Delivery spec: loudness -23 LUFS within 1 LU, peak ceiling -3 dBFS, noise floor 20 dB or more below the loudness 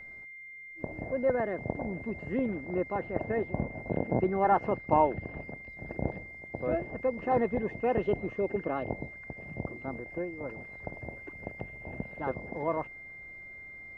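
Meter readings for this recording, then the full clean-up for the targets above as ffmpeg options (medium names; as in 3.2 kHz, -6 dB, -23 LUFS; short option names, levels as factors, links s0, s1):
steady tone 2.1 kHz; tone level -44 dBFS; loudness -33.0 LUFS; peak level -11.5 dBFS; loudness target -23.0 LUFS
-> -af "bandreject=f=2100:w=30"
-af "volume=3.16,alimiter=limit=0.708:level=0:latency=1"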